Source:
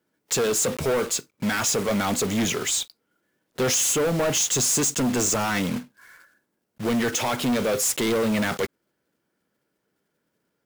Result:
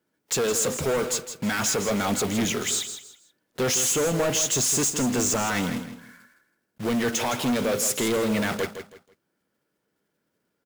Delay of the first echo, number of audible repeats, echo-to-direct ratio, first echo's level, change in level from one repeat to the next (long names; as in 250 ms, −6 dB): 162 ms, 3, −9.5 dB, −10.0 dB, −11.5 dB